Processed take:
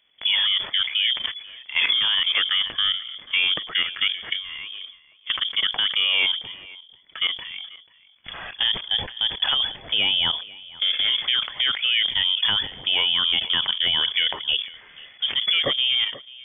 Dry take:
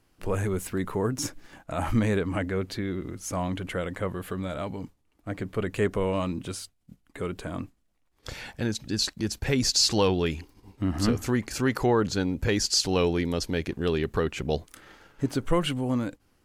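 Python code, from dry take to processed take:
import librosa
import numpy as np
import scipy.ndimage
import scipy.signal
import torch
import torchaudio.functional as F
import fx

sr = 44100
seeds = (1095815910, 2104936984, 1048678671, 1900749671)

p1 = fx.level_steps(x, sr, step_db=15)
p2 = fx.peak_eq(p1, sr, hz=1200.0, db=6.5, octaves=0.71)
p3 = p2 + fx.echo_single(p2, sr, ms=488, db=-21.0, dry=0)
p4 = fx.freq_invert(p3, sr, carrier_hz=3400)
p5 = fx.sustainer(p4, sr, db_per_s=130.0)
y = F.gain(torch.from_numpy(p5), 8.5).numpy()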